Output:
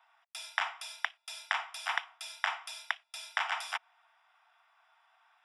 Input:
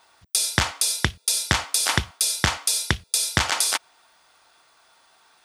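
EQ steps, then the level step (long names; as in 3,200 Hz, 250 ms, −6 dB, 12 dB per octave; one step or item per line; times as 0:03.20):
Savitzky-Golay smoothing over 25 samples
Butterworth high-pass 660 Hz 96 dB per octave
−7.5 dB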